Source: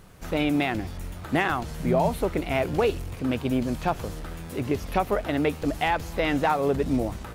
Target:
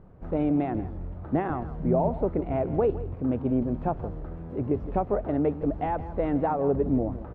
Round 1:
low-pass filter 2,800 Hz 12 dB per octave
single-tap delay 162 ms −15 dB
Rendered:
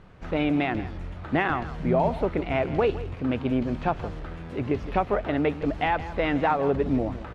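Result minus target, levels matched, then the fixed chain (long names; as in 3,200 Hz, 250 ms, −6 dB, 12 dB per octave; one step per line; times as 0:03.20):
2,000 Hz band +13.5 dB
low-pass filter 760 Hz 12 dB per octave
single-tap delay 162 ms −15 dB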